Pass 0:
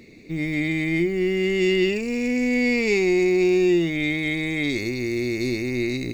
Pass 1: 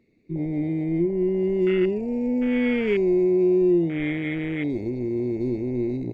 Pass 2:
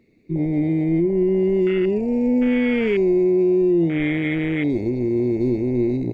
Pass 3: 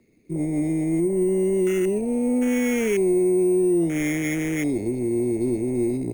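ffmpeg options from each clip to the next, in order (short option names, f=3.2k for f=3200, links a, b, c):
-af "afwtdn=0.0708,highshelf=f=2.5k:g=-11.5"
-af "alimiter=limit=-17.5dB:level=0:latency=1:release=65,volume=5.5dB"
-filter_complex "[0:a]acrossover=split=220|550[a][b][c];[a]asoftclip=type=tanh:threshold=-28.5dB[d];[d][b][c]amix=inputs=3:normalize=0,acrusher=samples=5:mix=1:aa=0.000001,volume=-2dB"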